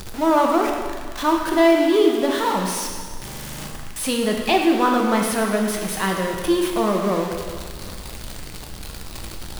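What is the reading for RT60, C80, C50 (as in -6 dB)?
1.7 s, 4.5 dB, 3.0 dB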